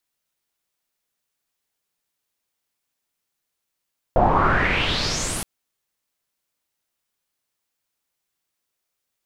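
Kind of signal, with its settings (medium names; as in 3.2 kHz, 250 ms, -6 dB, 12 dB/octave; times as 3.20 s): swept filtered noise pink, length 1.27 s lowpass, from 660 Hz, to 11 kHz, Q 4.5, exponential, gain ramp -13 dB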